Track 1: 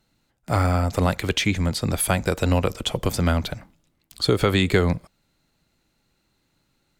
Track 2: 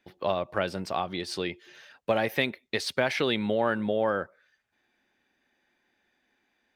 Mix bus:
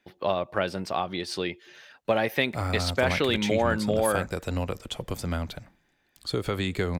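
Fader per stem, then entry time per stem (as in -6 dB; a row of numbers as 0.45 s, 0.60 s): -9.0 dB, +1.5 dB; 2.05 s, 0.00 s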